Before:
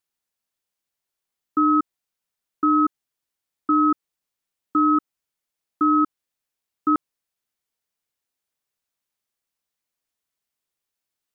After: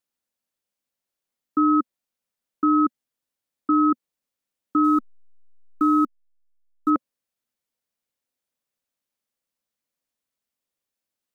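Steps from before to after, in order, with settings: 4.84–6.9 level-crossing sampler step -42.5 dBFS; small resonant body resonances 240/530 Hz, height 7 dB, ringing for 30 ms; gain -2.5 dB

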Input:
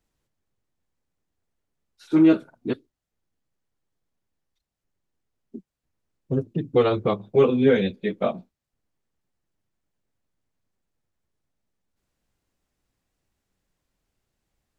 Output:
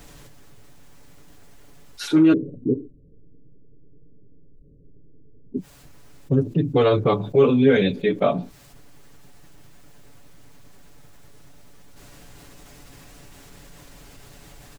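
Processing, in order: 2.33–5.57 steep low-pass 500 Hz 72 dB/oct; comb 7 ms, depth 53%; fast leveller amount 50%; gain -2 dB

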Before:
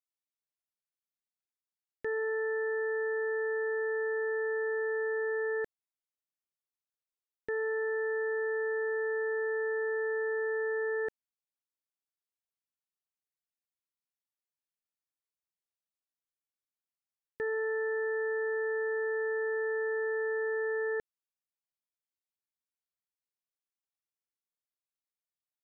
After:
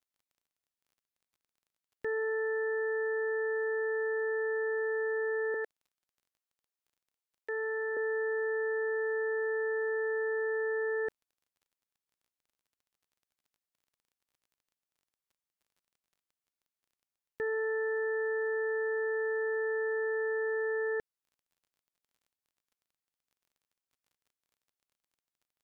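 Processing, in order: 5.54–7.97 HPF 430 Hz 24 dB/oct; crackle 26/s -59 dBFS

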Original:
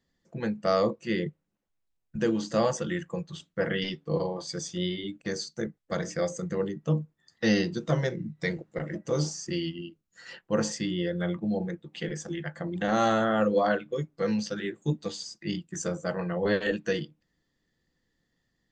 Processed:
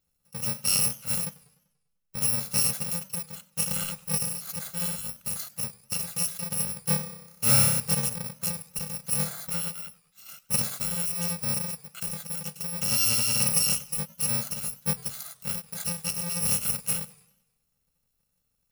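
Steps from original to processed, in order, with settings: FFT order left unsorted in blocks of 128 samples; 7–7.8 flutter echo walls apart 5.2 m, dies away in 0.94 s; warbling echo 98 ms, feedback 51%, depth 208 cents, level -21 dB

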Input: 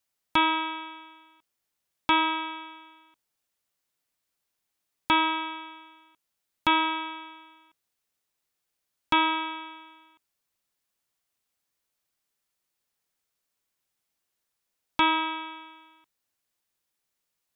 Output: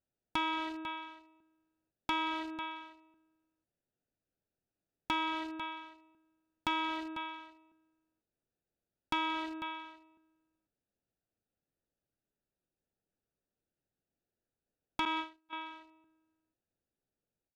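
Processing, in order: Wiener smoothing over 41 samples; echo 0.497 s -23 dB; compressor 5:1, threshold -35 dBFS, peak gain reduction 15 dB; soft clip -26.5 dBFS, distortion -13 dB; 15.05–15.53 gate -41 dBFS, range -37 dB; ending taper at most 200 dB/s; gain +4.5 dB

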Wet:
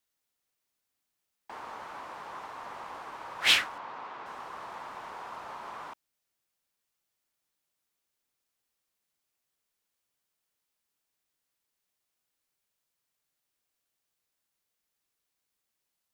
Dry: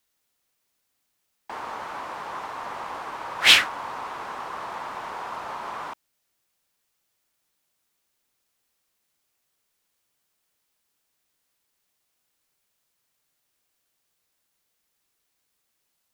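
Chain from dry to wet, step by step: 3.78–4.26 BPF 130–4300 Hz; gain -8 dB

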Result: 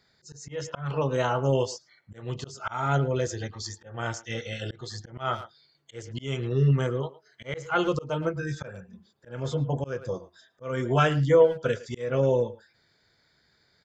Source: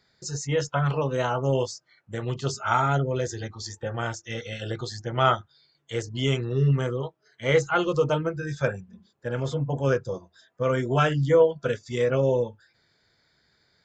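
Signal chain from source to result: speakerphone echo 0.11 s, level -17 dB; auto swell 0.267 s

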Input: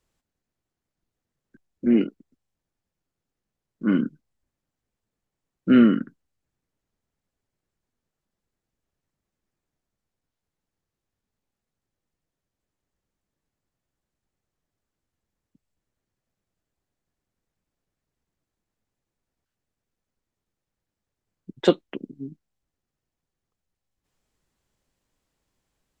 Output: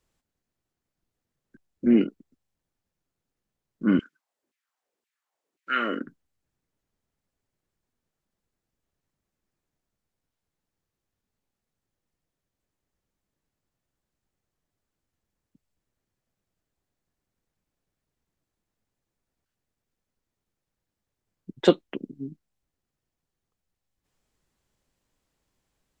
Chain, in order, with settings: 3.99–6.06 LFO high-pass saw down 1.9 Hz 270–2600 Hz

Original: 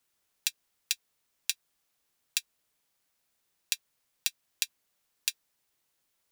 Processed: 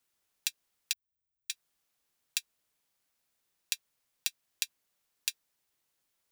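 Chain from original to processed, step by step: 0.93–1.5 inverse Chebyshev band-stop 650–8300 Hz, stop band 80 dB; gain -2.5 dB

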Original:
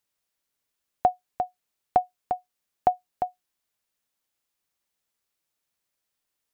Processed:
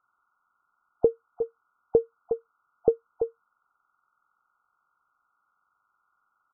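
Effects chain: nonlinear frequency compression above 1100 Hz 4:1; pitch shift -8 st

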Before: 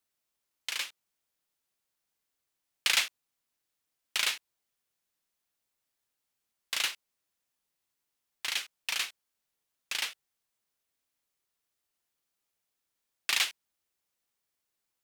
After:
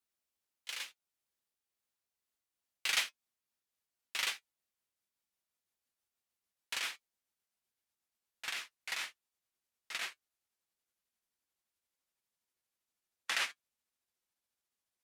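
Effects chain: gliding pitch shift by -6 st starting unshifted; notch comb 150 Hz; gain -4 dB

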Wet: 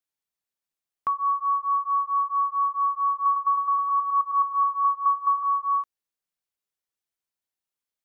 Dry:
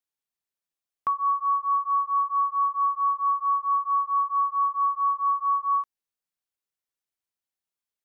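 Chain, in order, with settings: 3.15–5.43 reverse delay 0.106 s, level -5.5 dB

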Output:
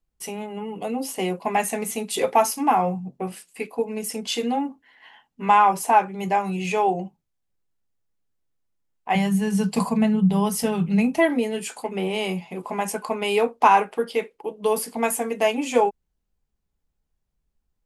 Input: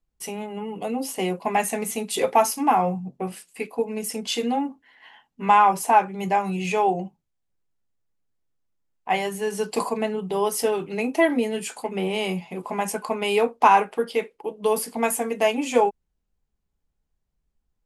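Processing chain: 9.15–11.18 resonant low shelf 250 Hz +9.5 dB, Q 3

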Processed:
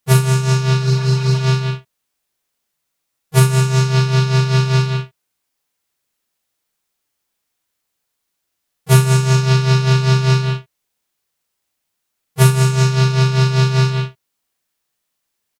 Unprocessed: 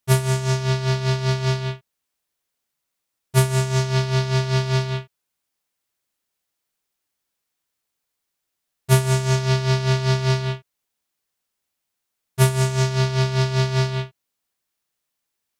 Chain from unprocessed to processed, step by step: doubler 39 ms -5 dB; spectral repair 0.87–1.37, 490–4000 Hz; harmoniser +3 st -16 dB; gain +3.5 dB

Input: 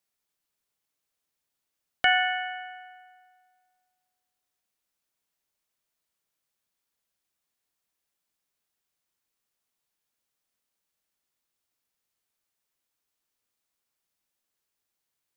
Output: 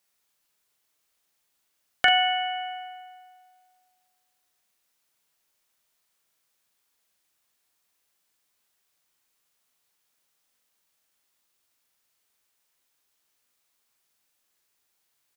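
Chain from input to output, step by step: low shelf 440 Hz -5.5 dB; doubler 41 ms -5 dB; in parallel at +0.5 dB: compressor, threshold -36 dBFS, peak gain reduction 17 dB; on the sum: gain +1.5 dB

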